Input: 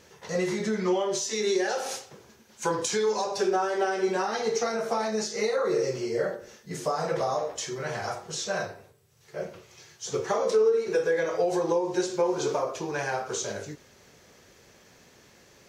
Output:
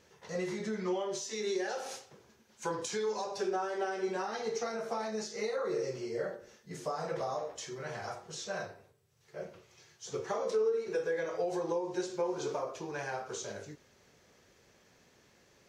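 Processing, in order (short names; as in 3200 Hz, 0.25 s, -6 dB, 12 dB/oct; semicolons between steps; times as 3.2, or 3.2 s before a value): high shelf 7800 Hz -4.5 dB; gain -8 dB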